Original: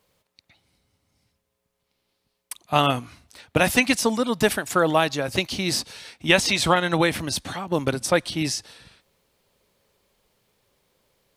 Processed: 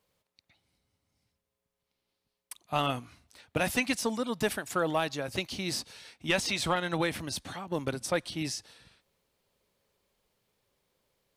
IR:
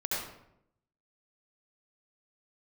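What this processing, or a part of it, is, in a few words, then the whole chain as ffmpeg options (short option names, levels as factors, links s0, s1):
saturation between pre-emphasis and de-emphasis: -af "highshelf=f=4500:g=9.5,asoftclip=type=tanh:threshold=0.531,highshelf=f=4500:g=-9.5,volume=0.376"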